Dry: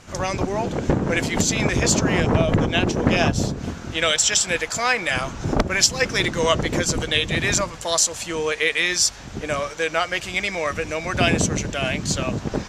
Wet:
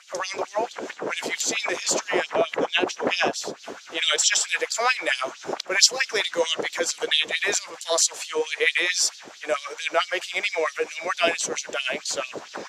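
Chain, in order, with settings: LFO high-pass sine 4.5 Hz 390–4200 Hz; gain -3.5 dB

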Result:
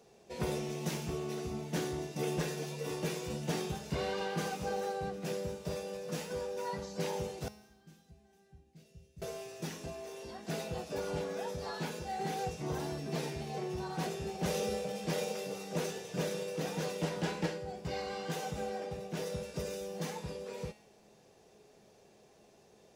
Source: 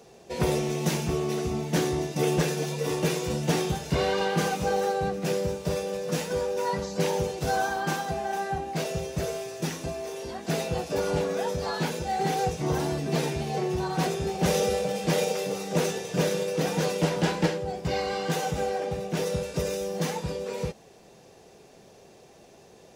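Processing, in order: 7.48–9.22 passive tone stack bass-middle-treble 10-0-1; resonator 210 Hz, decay 0.84 s, mix 70%

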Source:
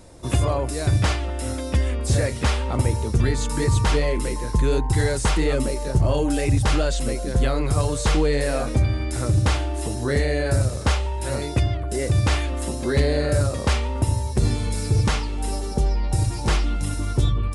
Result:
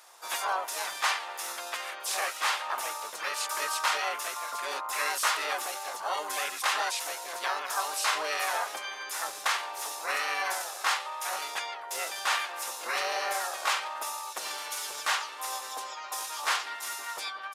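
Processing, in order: harmoniser -7 st -2 dB, +5 st -2 dB; ladder high-pass 800 Hz, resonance 30%; gain +2.5 dB

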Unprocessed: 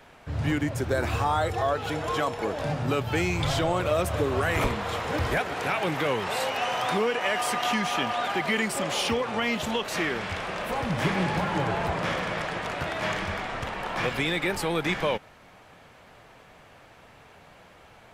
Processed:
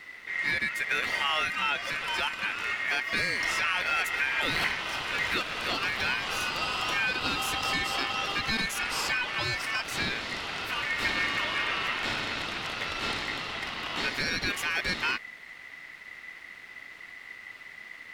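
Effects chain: added noise brown -41 dBFS; one-sided clip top -20.5 dBFS; ring modulator 2000 Hz

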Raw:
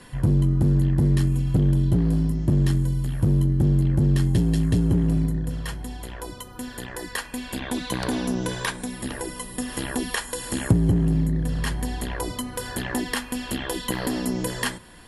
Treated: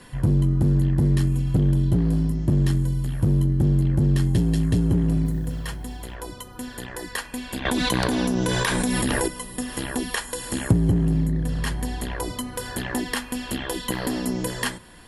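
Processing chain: 5.25–6.15 modulation noise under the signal 34 dB; 7.65–9.28 fast leveller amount 100%

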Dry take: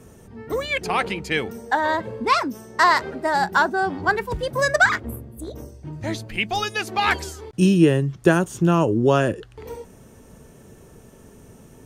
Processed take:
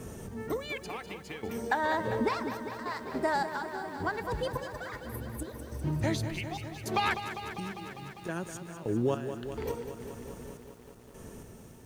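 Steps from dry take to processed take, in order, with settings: compressor 6:1, threshold -29 dBFS, peak gain reduction 18 dB; random-step tremolo, depth 95%; lo-fi delay 0.2 s, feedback 80%, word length 10-bit, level -10 dB; gain +4 dB

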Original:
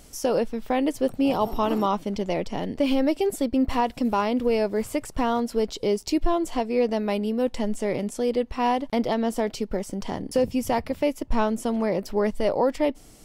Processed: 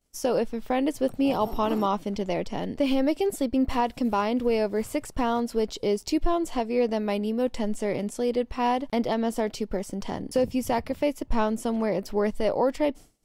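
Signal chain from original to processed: expander -35 dBFS; gain -1.5 dB

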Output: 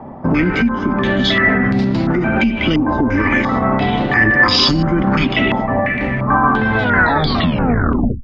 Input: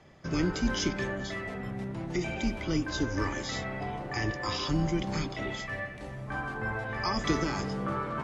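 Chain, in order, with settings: tape stop at the end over 1.45 s; bell 240 Hz +14.5 dB 0.37 oct; compressor 10:1, threshold -27 dBFS, peak gain reduction 16 dB; maximiser +25 dB; stepped low-pass 2.9 Hz 890–4500 Hz; gain -6.5 dB

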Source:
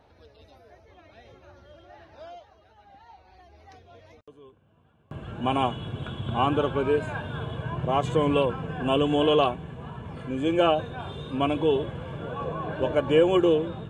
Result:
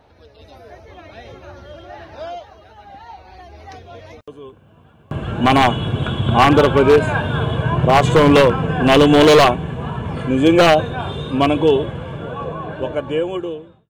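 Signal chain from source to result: ending faded out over 3.70 s; wavefolder -17.5 dBFS; AGC gain up to 7.5 dB; gain +6 dB

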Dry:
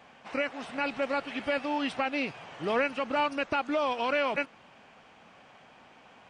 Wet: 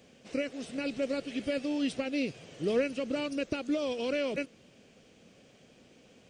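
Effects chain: EQ curve 500 Hz 0 dB, 880 Hz -21 dB, 6400 Hz +3 dB; gain +2.5 dB

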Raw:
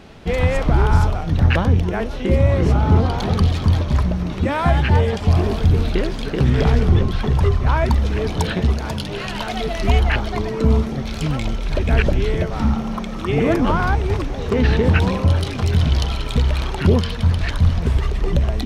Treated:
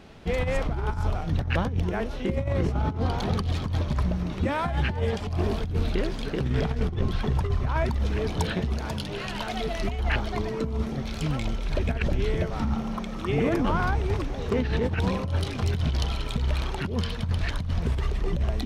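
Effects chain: negative-ratio compressor -16 dBFS, ratio -0.5; gain -7.5 dB

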